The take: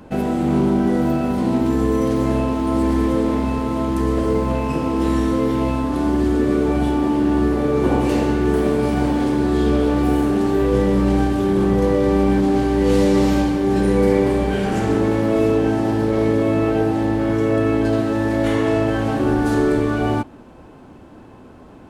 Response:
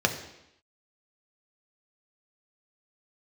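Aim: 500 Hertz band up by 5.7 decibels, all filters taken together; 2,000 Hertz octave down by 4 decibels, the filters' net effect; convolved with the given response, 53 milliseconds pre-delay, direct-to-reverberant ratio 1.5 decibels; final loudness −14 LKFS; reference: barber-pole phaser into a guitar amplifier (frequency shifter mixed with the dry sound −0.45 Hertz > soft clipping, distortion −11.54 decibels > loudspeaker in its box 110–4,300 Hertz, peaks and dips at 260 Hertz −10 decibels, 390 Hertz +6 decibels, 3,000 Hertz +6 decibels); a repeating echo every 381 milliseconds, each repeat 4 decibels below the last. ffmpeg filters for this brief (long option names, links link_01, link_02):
-filter_complex "[0:a]equalizer=frequency=500:width_type=o:gain=4,equalizer=frequency=2000:width_type=o:gain=-6.5,aecho=1:1:381|762|1143|1524|1905|2286|2667|3048|3429:0.631|0.398|0.25|0.158|0.0994|0.0626|0.0394|0.0249|0.0157,asplit=2[link_01][link_02];[1:a]atrim=start_sample=2205,adelay=53[link_03];[link_02][link_03]afir=irnorm=-1:irlink=0,volume=-14dB[link_04];[link_01][link_04]amix=inputs=2:normalize=0,asplit=2[link_05][link_06];[link_06]afreqshift=-0.45[link_07];[link_05][link_07]amix=inputs=2:normalize=1,asoftclip=threshold=-13.5dB,highpass=110,equalizer=frequency=260:width_type=q:width=4:gain=-10,equalizer=frequency=390:width_type=q:width=4:gain=6,equalizer=frequency=3000:width_type=q:width=4:gain=6,lowpass=frequency=4300:width=0.5412,lowpass=frequency=4300:width=1.3066,volume=5dB"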